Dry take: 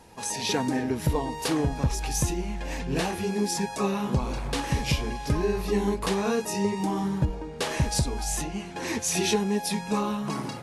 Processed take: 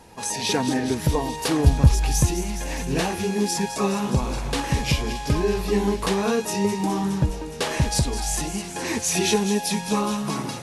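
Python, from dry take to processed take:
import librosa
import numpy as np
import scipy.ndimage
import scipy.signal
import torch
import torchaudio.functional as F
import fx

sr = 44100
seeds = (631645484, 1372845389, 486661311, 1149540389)

y = fx.peak_eq(x, sr, hz=69.0, db=fx.line((1.65, 11.5), (2.25, 5.0)), octaves=2.6, at=(1.65, 2.25), fade=0.02)
y = fx.echo_wet_highpass(y, sr, ms=208, feedback_pct=78, hz=2700.0, wet_db=-10)
y = y * 10.0 ** (3.5 / 20.0)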